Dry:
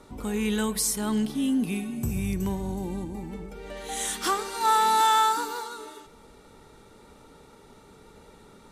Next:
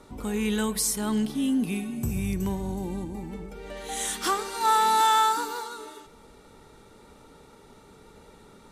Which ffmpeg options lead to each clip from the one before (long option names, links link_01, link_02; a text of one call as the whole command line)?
ffmpeg -i in.wav -af anull out.wav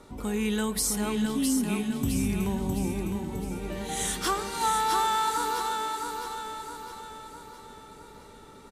ffmpeg -i in.wav -af "acompressor=threshold=-23dB:ratio=6,aecho=1:1:660|1320|1980|2640|3300|3960:0.562|0.27|0.13|0.0622|0.0299|0.0143" out.wav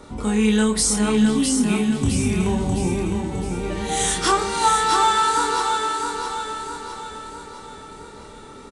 ffmpeg -i in.wav -filter_complex "[0:a]asplit=2[link_01][link_02];[link_02]adelay=28,volume=-4dB[link_03];[link_01][link_03]amix=inputs=2:normalize=0,aresample=22050,aresample=44100,volume=7dB" out.wav